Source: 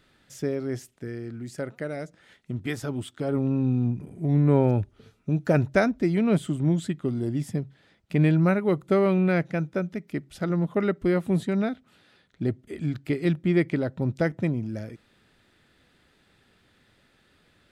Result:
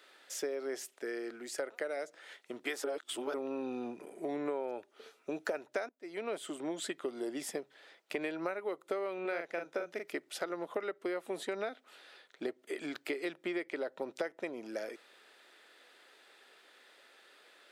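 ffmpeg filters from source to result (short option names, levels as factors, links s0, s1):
-filter_complex "[0:a]asettb=1/sr,asplit=3[s0][s1][s2];[s0]atrim=end=9.214[s3];[s1]atrim=start=9.21:end=10.12,asetpts=PTS-STARTPTS,afade=t=in:d=0.004:c=qsin,afade=t=out:st=0.906:d=0.004:c=qsin,asplit=2[s4][s5];[s5]adelay=41,volume=0.562[s6];[s4][s6]amix=inputs=2:normalize=0,atrim=end_sample=40131[s7];[s2]atrim=start=10.116[s8];[s3][s7]acrossfade=d=0.004:c1=hsin:c2=qsin[s9];[s9][s8]acrossfade=d=0.004:c1=qsin:c2=hsin,asplit=4[s10][s11][s12][s13];[s10]atrim=end=2.842[s14];[s11]atrim=start=2.838:end=3.342,asetpts=PTS-STARTPTS,areverse[s15];[s12]atrim=start=3.338:end=5.89,asetpts=PTS-STARTPTS,afade=t=out:st=2.548:d=0.004:c=hsin:silence=0.0668344[s16];[s13]atrim=start=5.89,asetpts=PTS-STARTPTS,afade=t=in:d=1.08:silence=0.0668344[s17];[s14][s15]acrossfade=d=0.004:c1=hsin:c2=hsin[s18];[s16][s17]concat=n=2:v=0:a=1[s19];[s18][s19]acrossfade=d=0.004:c1=hsin:c2=hsin,highpass=f=410:w=0.5412,highpass=f=410:w=1.3066,acompressor=threshold=0.0141:ratio=12,volume=1.58"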